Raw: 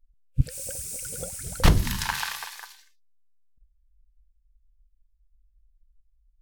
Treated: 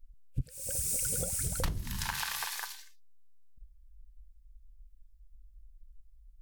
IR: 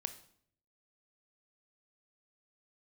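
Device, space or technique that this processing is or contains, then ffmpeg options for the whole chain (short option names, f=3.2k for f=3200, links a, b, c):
ASMR close-microphone chain: -af "lowshelf=f=210:g=6,acompressor=threshold=-33dB:ratio=8,highshelf=f=6.7k:g=5.5,volume=2dB"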